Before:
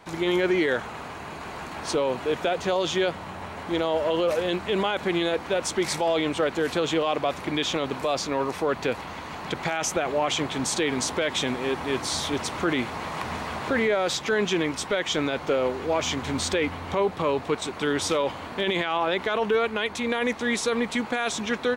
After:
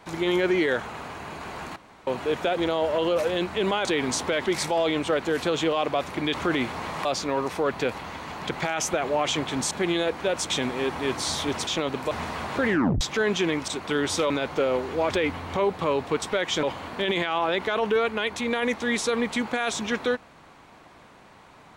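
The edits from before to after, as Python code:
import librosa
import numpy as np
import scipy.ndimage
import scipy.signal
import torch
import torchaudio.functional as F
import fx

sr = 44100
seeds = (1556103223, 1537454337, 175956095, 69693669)

y = fx.edit(x, sr, fx.room_tone_fill(start_s=1.76, length_s=0.31),
    fx.cut(start_s=2.57, length_s=1.12),
    fx.swap(start_s=4.97, length_s=0.79, other_s=10.74, other_length_s=0.61),
    fx.swap(start_s=7.64, length_s=0.44, other_s=12.52, other_length_s=0.71),
    fx.tape_stop(start_s=13.8, length_s=0.33),
    fx.swap(start_s=14.8, length_s=0.41, other_s=17.6, other_length_s=0.62),
    fx.cut(start_s=16.02, length_s=0.47), tone=tone)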